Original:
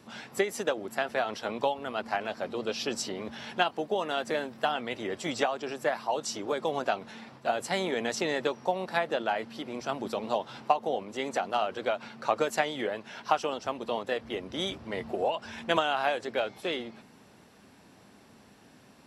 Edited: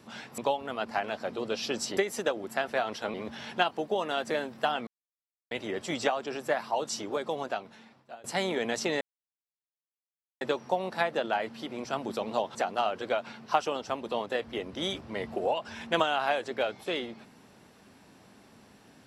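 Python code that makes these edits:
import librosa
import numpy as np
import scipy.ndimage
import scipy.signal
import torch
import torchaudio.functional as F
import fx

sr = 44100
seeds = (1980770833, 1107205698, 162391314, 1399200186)

y = fx.edit(x, sr, fx.move(start_s=0.38, length_s=1.17, to_s=3.14),
    fx.insert_silence(at_s=4.87, length_s=0.64),
    fx.fade_out_to(start_s=6.34, length_s=1.26, floor_db=-23.5),
    fx.insert_silence(at_s=8.37, length_s=1.4),
    fx.cut(start_s=10.51, length_s=0.8),
    fx.cut(start_s=12.22, length_s=1.01), tone=tone)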